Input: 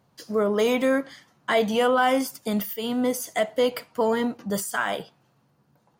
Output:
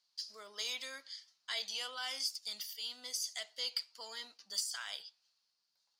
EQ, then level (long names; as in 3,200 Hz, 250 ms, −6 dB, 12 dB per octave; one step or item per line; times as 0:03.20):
resonant band-pass 4,700 Hz, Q 4.2
spectral tilt +2 dB per octave
+1.5 dB